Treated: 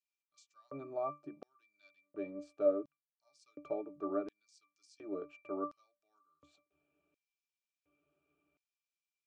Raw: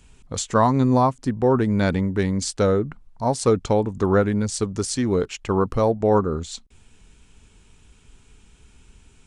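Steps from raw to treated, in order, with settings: octave resonator D, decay 0.22 s; LFO high-pass square 0.7 Hz 480–5000 Hz; gain -1.5 dB

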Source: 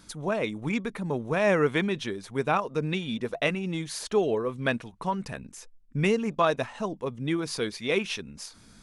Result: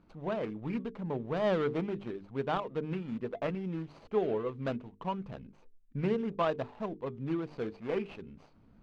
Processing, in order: median filter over 25 samples; LPF 3300 Hz 12 dB/oct; notches 50/100/150/200/250/300/350/400/450 Hz; gain -4.5 dB

